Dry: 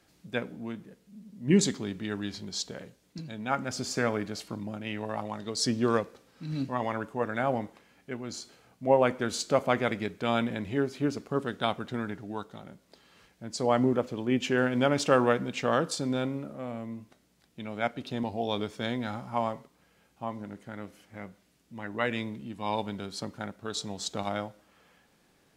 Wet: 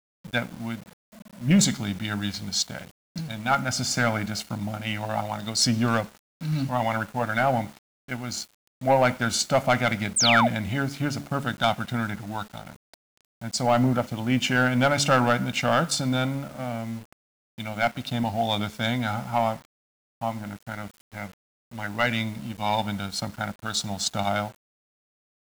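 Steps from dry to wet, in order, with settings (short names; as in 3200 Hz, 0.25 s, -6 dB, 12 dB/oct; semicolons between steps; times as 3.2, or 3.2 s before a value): de-hum 71.13 Hz, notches 6; gate with hold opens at -51 dBFS; bell 440 Hz -12 dB 0.58 oct; comb 1.4 ms, depth 50%; sample leveller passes 2; painted sound fall, 10.16–10.48, 560–9400 Hz -21 dBFS; requantised 8-bit, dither none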